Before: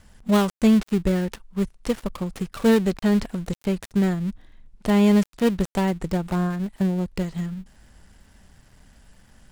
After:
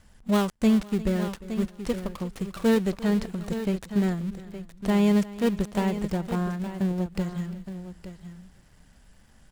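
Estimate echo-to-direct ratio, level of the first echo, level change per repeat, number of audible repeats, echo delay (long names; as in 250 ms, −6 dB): −10.0 dB, −18.0 dB, repeats not evenly spaced, 4, 352 ms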